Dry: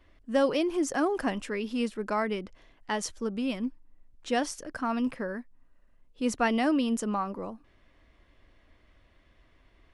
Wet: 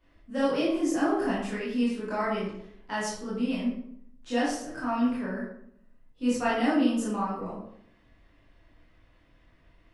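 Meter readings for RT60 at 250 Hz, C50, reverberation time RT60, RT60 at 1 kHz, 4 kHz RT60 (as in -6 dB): 0.80 s, 1.5 dB, 0.70 s, 0.65 s, 0.45 s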